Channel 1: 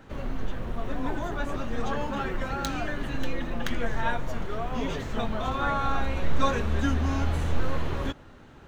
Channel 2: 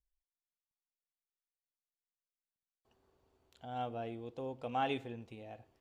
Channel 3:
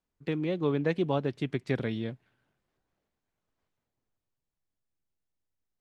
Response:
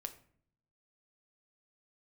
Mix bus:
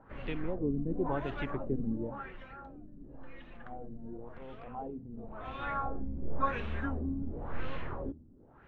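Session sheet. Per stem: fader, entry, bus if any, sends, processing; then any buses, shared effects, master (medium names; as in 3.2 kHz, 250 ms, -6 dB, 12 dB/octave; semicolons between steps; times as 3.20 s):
1.80 s -9.5 dB -> 2.45 s -20 dB -> 5.09 s -20 dB -> 5.82 s -10 dB, 0.00 s, no send, de-hum 80.03 Hz, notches 5
-2.5 dB, 0.00 s, no send, transient shaper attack -12 dB, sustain +5 dB; compression 2.5:1, threshold -44 dBFS, peak gain reduction 8.5 dB
-8.0 dB, 0.00 s, no send, none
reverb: none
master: LFO low-pass sine 0.94 Hz 230–3000 Hz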